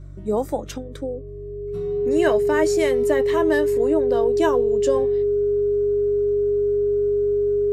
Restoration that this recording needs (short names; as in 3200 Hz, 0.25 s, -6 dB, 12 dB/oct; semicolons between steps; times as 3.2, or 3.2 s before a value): de-hum 47.9 Hz, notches 3; notch 410 Hz, Q 30